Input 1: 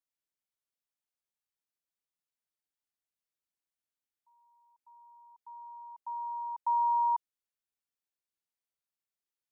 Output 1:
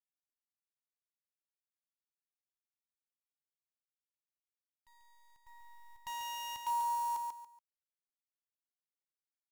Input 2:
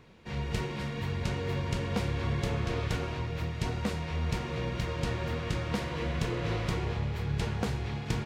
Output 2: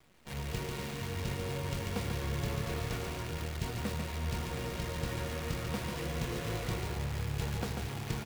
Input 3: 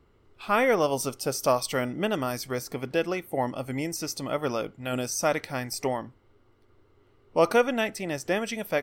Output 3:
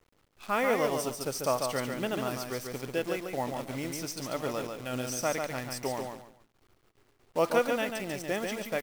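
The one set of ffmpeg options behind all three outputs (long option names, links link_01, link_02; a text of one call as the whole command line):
ffmpeg -i in.wav -af "acrusher=bits=7:dc=4:mix=0:aa=0.000001,aecho=1:1:142|284|426:0.562|0.146|0.038,volume=-5.5dB" out.wav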